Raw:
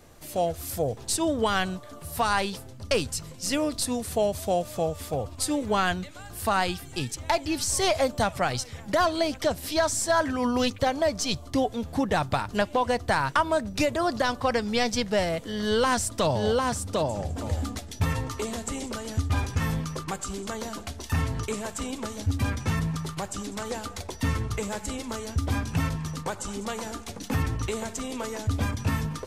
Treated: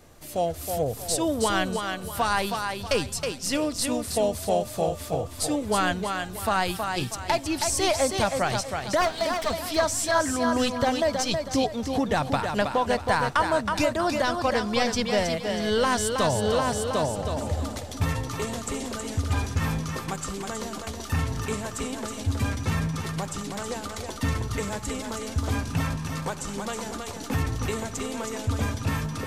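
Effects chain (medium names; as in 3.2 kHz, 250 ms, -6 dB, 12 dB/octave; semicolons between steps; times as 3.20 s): 9.01–9.51 s: comb filter that takes the minimum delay 4.4 ms; thinning echo 320 ms, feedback 35%, high-pass 170 Hz, level -5 dB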